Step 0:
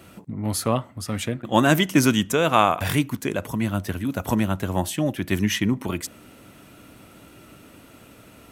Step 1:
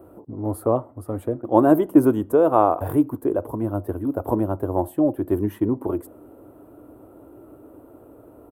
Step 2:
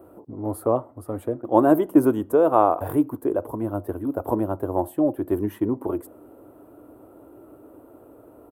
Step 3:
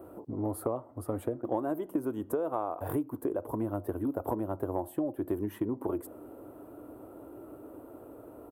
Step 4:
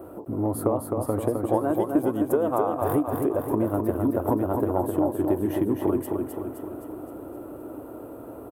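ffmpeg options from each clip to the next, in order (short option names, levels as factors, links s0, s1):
-af "firequalizer=gain_entry='entry(110,0);entry(180,-10);entry(310,9);entry(1000,1);entry(2100,-23);entry(6100,-30);entry(8700,-14);entry(13000,-5)':delay=0.05:min_phase=1,volume=0.841"
-af "lowshelf=f=210:g=-5.5"
-af "acompressor=threshold=0.0398:ratio=10"
-af "aecho=1:1:260|520|780|1040|1300|1560|1820|2080:0.596|0.34|0.194|0.11|0.0629|0.0358|0.0204|0.0116,volume=2.24"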